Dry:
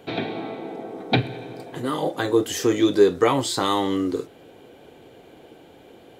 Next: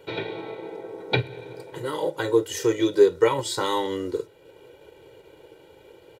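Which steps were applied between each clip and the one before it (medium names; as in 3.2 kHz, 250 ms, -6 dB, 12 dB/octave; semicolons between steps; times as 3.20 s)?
hum notches 50/100/150 Hz; comb 2.1 ms, depth 88%; transient shaper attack 0 dB, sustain -4 dB; trim -4.5 dB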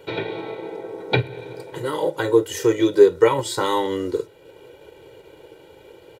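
dynamic bell 4.9 kHz, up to -4 dB, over -41 dBFS, Q 0.78; trim +4 dB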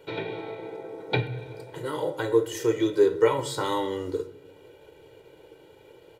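reverberation RT60 0.80 s, pre-delay 7 ms, DRR 7.5 dB; trim -6.5 dB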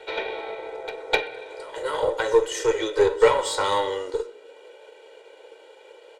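Chebyshev band-pass 490–8800 Hz, order 3; Chebyshev shaper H 6 -24 dB, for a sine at -11 dBFS; pre-echo 255 ms -15 dB; trim +6.5 dB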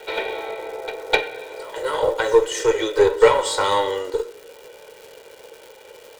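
crackle 350 per s -38 dBFS; trim +3.5 dB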